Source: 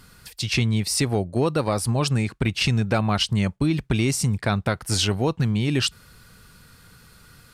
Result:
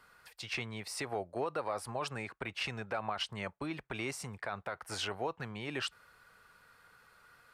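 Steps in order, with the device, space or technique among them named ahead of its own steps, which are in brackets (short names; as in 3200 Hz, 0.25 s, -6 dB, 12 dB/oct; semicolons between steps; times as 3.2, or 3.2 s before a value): DJ mixer with the lows and highs turned down (three-band isolator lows -20 dB, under 490 Hz, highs -14 dB, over 2200 Hz; limiter -21.5 dBFS, peak gain reduction 9 dB); gain -4 dB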